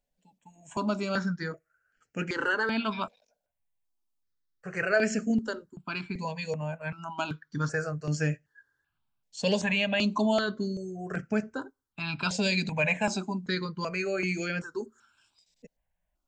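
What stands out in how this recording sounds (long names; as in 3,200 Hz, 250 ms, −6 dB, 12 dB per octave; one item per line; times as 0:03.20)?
notches that jump at a steady rate 2.6 Hz 340–3,700 Hz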